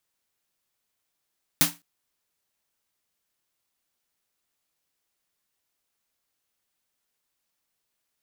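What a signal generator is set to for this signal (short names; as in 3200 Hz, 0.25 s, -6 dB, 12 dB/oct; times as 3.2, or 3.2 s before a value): snare drum length 0.21 s, tones 170 Hz, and 290 Hz, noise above 570 Hz, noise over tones 9 dB, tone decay 0.24 s, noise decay 0.23 s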